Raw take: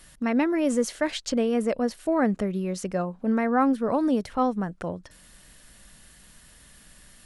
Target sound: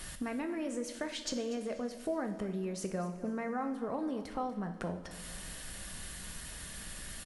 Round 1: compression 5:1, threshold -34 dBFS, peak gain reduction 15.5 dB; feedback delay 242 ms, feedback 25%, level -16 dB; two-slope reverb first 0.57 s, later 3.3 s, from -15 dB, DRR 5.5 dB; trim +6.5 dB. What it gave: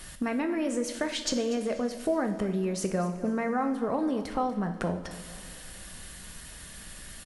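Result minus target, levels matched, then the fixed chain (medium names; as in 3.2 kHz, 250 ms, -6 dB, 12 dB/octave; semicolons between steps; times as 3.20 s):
compression: peak gain reduction -7.5 dB
compression 5:1, threshold -43.5 dBFS, peak gain reduction 23 dB; feedback delay 242 ms, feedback 25%, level -16 dB; two-slope reverb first 0.57 s, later 3.3 s, from -15 dB, DRR 5.5 dB; trim +6.5 dB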